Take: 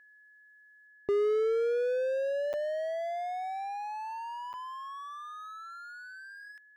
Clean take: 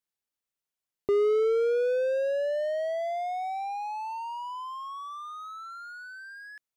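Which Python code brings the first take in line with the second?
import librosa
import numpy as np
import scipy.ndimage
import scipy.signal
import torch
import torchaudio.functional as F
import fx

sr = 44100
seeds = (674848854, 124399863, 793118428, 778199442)

y = fx.notch(x, sr, hz=1700.0, q=30.0)
y = fx.fix_interpolate(y, sr, at_s=(2.53, 4.53), length_ms=8.3)
y = fx.fix_level(y, sr, at_s=0.87, step_db=3.5)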